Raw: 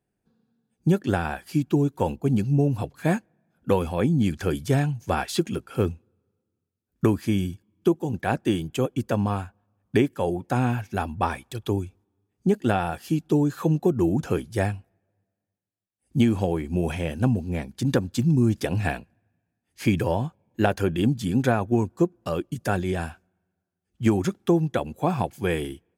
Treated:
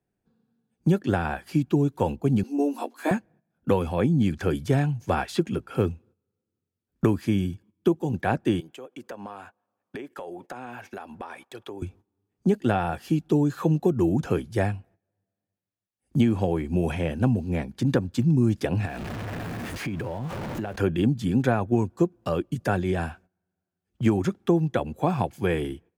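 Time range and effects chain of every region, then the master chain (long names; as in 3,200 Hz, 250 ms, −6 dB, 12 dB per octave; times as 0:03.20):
0:02.43–0:03.11: Chebyshev high-pass with heavy ripple 230 Hz, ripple 6 dB + high-shelf EQ 4,200 Hz +11.5 dB + double-tracking delay 14 ms −2.5 dB
0:08.60–0:11.82: high-pass filter 400 Hz + downward compressor 5 to 1, threshold −42 dBFS
0:18.85–0:20.76: converter with a step at zero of −31 dBFS + downward compressor, threshold −32 dBFS
whole clip: noise gate −52 dBFS, range −13 dB; high-shelf EQ 4,600 Hz −7 dB; multiband upward and downward compressor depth 40%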